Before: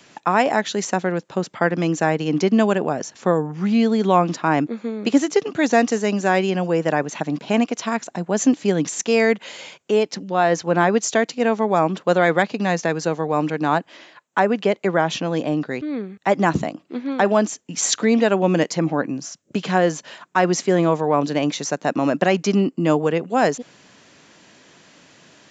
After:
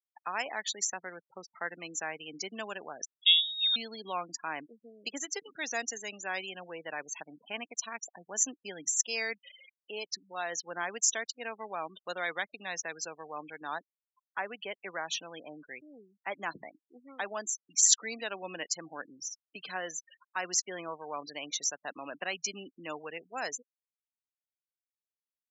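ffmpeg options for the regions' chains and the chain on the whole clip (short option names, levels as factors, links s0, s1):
-filter_complex "[0:a]asettb=1/sr,asplit=3[s0][s1][s2];[s0]atrim=end=3.054[s3];[s1]atrim=start=3.05:end=3.76,asetpts=PTS-STARTPTS,afade=t=in:d=0.004:c=qsin,afade=t=out:st=0.706:d=0.004:c=qsin,aecho=1:1:1.7:0.71,atrim=end_sample=31311,lowpass=f=3300:t=q:w=0.5098,lowpass=f=3300:t=q:w=0.6013,lowpass=f=3300:t=q:w=0.9,lowpass=f=3300:t=q:w=2.563,afreqshift=-3900,adynamicequalizer=threshold=0.0398:dfrequency=1700:dqfactor=0.7:tfrequency=1700:tqfactor=0.7:attack=5:release=100:ratio=0.375:range=3:mode=cutabove:tftype=highshelf[s4];[s2]atrim=start=3.756[s5];[s3][s4]acrossfade=d=0.004:c1=hsin:c2=qsin[s6];[s6][s5]acrossfade=d=0.004:c1=qsin:c2=hsin,afftfilt=real='re*gte(hypot(re,im),0.0501)':imag='im*gte(hypot(re,im),0.0501)':win_size=1024:overlap=0.75,aderivative"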